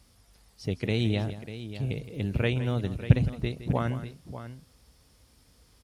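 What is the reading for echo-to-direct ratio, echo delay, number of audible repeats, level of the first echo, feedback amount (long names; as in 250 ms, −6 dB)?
−10.0 dB, 165 ms, 2, −13.5 dB, repeats not evenly spaced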